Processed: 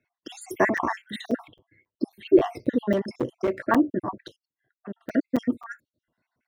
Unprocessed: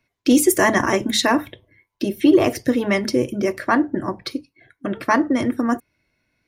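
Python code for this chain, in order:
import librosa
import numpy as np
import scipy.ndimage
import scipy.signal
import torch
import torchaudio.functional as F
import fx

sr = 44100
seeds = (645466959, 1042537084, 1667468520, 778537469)

y = fx.spec_dropout(x, sr, seeds[0], share_pct=58)
y = fx.lowpass(y, sr, hz=1100.0, slope=6)
y = fx.clip_hard(y, sr, threshold_db=-17.5, at=(2.94, 3.58))
y = fx.highpass(y, sr, hz=160.0, slope=6)
y = fx.buffer_crackle(y, sr, first_s=0.77, period_s=0.27, block=256, kind='zero')
y = fx.upward_expand(y, sr, threshold_db=-43.0, expansion=1.5, at=(4.35, 5.14), fade=0.02)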